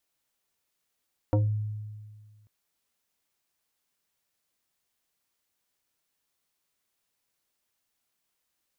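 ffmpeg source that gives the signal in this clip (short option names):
-f lavfi -i "aevalsrc='0.119*pow(10,-3*t/1.76)*sin(2*PI*106*t+1.4*pow(10,-3*t/0.26)*sin(2*PI*3.91*106*t))':d=1.14:s=44100"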